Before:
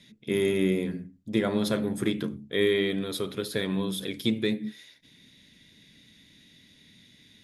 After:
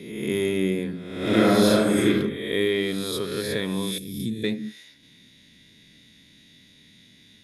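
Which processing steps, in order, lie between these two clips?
reverse spectral sustain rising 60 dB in 1.04 s; 1.18–2.07 s: reverb throw, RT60 0.9 s, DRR -4.5 dB; 3.98–4.44 s: FFT filter 180 Hz 0 dB, 1.2 kHz -30 dB, 8.7 kHz +2 dB

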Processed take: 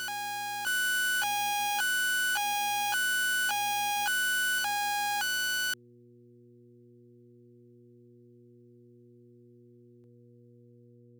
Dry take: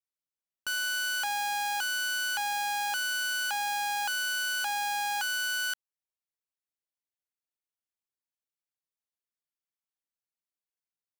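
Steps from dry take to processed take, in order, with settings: level rider gain up to 7 dB; mains buzz 120 Hz, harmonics 4, -50 dBFS -3 dB/octave; reverse echo 1153 ms -5 dB; trim -6.5 dB

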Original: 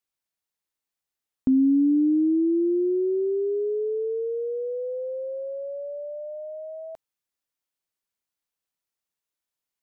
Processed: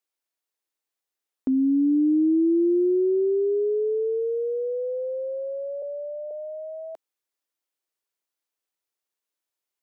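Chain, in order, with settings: 5.82–6.31 s: steep low-pass 650 Hz 96 dB/octave; resonant low shelf 240 Hz -10.5 dB, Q 1.5

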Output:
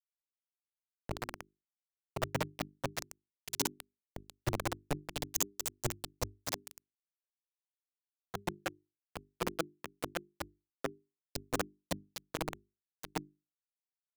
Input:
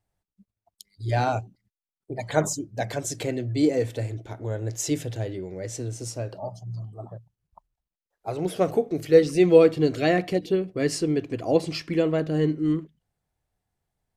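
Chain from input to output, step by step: delay that grows with frequency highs late, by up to 689 ms; speakerphone echo 360 ms, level -19 dB; gated-style reverb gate 490 ms flat, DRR 7 dB; compression 20:1, threshold -34 dBFS, peak gain reduction 24.5 dB; flange 0.38 Hz, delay 6.5 ms, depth 4.9 ms, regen +32%; in parallel at +2 dB: level held to a coarse grid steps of 21 dB; on the sum: granulator 80 ms, grains 16 per s, spray 13 ms; bit crusher 5-bit; hum notches 50/100/150/200/250/300/350/400 Hz; three bands expanded up and down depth 100%; trim +1 dB

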